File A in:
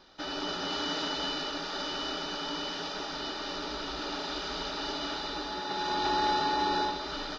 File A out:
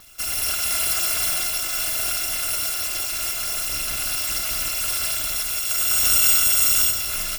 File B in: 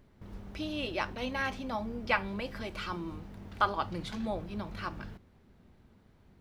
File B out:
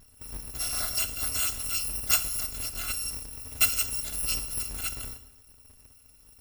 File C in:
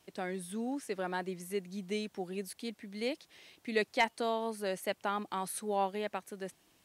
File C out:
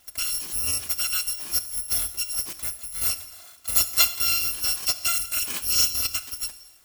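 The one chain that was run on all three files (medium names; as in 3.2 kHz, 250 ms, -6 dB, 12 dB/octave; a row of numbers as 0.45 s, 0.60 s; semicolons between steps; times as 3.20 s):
bit-reversed sample order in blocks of 256 samples; gated-style reverb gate 340 ms falling, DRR 10.5 dB; peak normalisation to -6 dBFS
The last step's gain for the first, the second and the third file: +10.0 dB, +4.5 dB, +10.0 dB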